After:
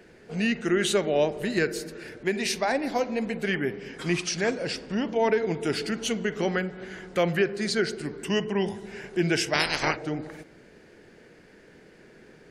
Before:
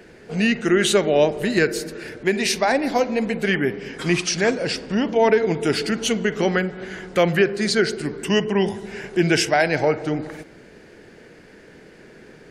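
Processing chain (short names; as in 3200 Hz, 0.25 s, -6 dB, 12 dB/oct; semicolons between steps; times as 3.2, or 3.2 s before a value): 9.53–9.95 spectral limiter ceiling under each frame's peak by 28 dB; on a send: reverb RT60 0.35 s, pre-delay 5 ms, DRR 23.5 dB; on the sum: gain -6.5 dB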